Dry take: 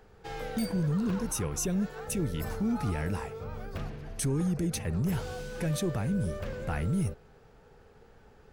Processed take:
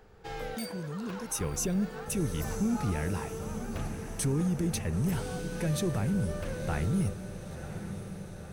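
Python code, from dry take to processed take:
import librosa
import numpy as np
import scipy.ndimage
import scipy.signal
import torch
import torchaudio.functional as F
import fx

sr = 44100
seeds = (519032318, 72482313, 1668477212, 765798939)

p1 = fx.highpass(x, sr, hz=490.0, slope=6, at=(0.55, 1.41))
y = p1 + fx.echo_diffused(p1, sr, ms=1005, feedback_pct=61, wet_db=-10.5, dry=0)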